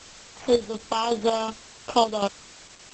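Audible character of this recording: aliases and images of a low sample rate 4 kHz, jitter 0%; chopped level 2.7 Hz, depth 60%, duty 50%; a quantiser's noise floor 8-bit, dither triangular; Opus

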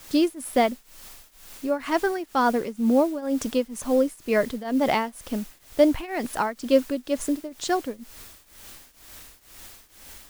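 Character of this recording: a quantiser's noise floor 8-bit, dither triangular; tremolo triangle 2.1 Hz, depth 90%

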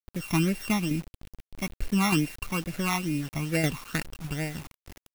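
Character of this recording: a buzz of ramps at a fixed pitch in blocks of 16 samples; tremolo saw down 3.3 Hz, depth 55%; phasing stages 12, 2.3 Hz, lowest notch 500–1100 Hz; a quantiser's noise floor 8-bit, dither none

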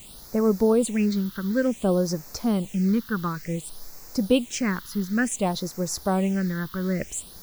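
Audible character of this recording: a quantiser's noise floor 8-bit, dither triangular; phasing stages 6, 0.56 Hz, lowest notch 620–3100 Hz

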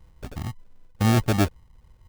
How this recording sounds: a buzz of ramps at a fixed pitch in blocks of 8 samples; phasing stages 6, 2.2 Hz, lowest notch 540–1200 Hz; aliases and images of a low sample rate 1 kHz, jitter 0%

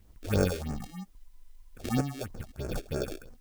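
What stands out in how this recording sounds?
aliases and images of a low sample rate 1 kHz, jitter 0%; phasing stages 4, 3.1 Hz, lowest notch 140–3600 Hz; chopped level 0.87 Hz, depth 65%, duty 75%; a quantiser's noise floor 12-bit, dither triangular

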